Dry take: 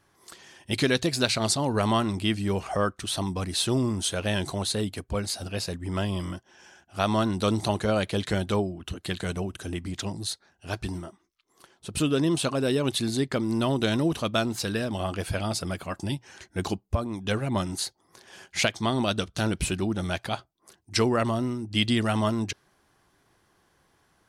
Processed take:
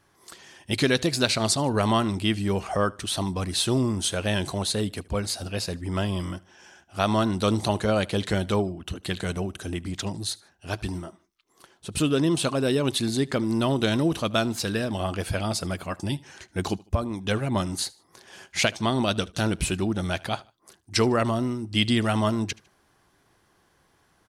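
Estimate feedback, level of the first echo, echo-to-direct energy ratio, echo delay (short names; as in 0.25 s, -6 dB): 37%, -23.5 dB, -23.0 dB, 76 ms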